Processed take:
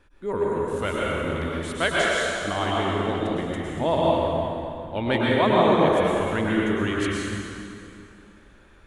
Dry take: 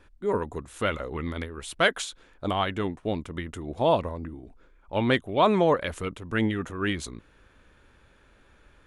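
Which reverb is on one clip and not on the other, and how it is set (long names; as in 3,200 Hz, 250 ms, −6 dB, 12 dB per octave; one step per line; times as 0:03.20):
dense smooth reverb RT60 2.7 s, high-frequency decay 0.8×, pre-delay 95 ms, DRR −5.5 dB
level −2.5 dB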